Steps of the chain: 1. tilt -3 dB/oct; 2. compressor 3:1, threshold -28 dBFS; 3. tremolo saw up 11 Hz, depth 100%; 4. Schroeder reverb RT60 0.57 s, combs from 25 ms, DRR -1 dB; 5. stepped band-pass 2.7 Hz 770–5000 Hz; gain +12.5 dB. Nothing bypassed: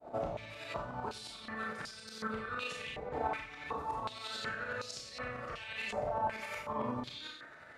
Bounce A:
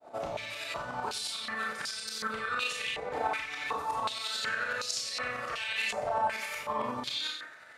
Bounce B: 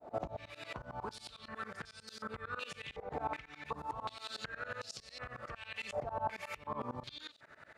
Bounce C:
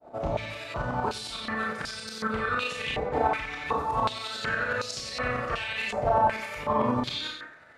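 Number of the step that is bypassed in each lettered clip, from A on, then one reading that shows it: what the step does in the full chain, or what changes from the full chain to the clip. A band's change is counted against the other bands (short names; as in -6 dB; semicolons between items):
1, 125 Hz band -10.0 dB; 4, 250 Hz band -2.0 dB; 2, mean gain reduction 10.5 dB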